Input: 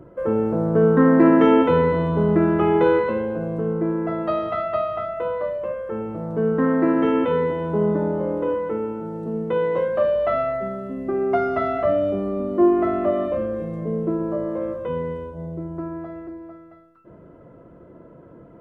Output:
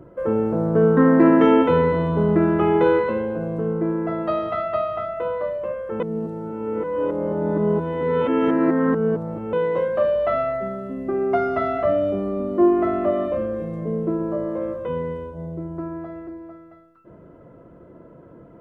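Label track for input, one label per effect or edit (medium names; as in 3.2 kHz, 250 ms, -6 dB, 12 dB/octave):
6.000000	9.530000	reverse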